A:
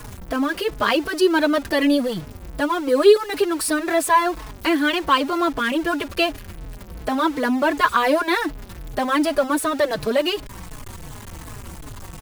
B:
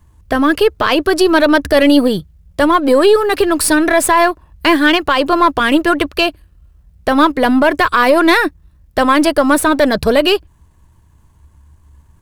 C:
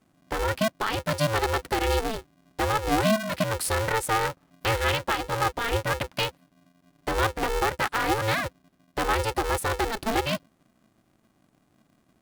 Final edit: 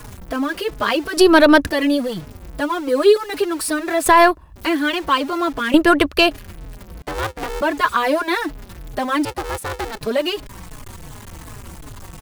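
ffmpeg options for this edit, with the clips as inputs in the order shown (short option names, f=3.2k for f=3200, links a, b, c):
-filter_complex "[1:a]asplit=3[a][b][c];[2:a]asplit=2[d][e];[0:a]asplit=6[f][g][h][i][j][k];[f]atrim=end=1.172[l];[a]atrim=start=1.168:end=1.672[m];[g]atrim=start=1.668:end=4.062[n];[b]atrim=start=4.058:end=4.562[o];[h]atrim=start=4.558:end=5.742[p];[c]atrim=start=5.738:end=6.312[q];[i]atrim=start=6.308:end=7.022[r];[d]atrim=start=7.018:end=7.612[s];[j]atrim=start=7.608:end=9.252[t];[e]atrim=start=9.248:end=10.012[u];[k]atrim=start=10.008[v];[l][m]acrossfade=d=0.004:c1=hsin:c2=hsin[w];[w][n]acrossfade=d=0.004:c1=hsin:c2=hsin[x];[x][o]acrossfade=d=0.004:c1=hsin:c2=hsin[y];[y][p]acrossfade=d=0.004:c1=hsin:c2=hsin[z];[z][q]acrossfade=d=0.004:c1=hsin:c2=hsin[aa];[aa][r]acrossfade=d=0.004:c1=hsin:c2=hsin[ab];[ab][s]acrossfade=d=0.004:c1=hsin:c2=hsin[ac];[ac][t]acrossfade=d=0.004:c1=hsin:c2=hsin[ad];[ad][u]acrossfade=d=0.004:c1=hsin:c2=hsin[ae];[ae][v]acrossfade=d=0.004:c1=hsin:c2=hsin"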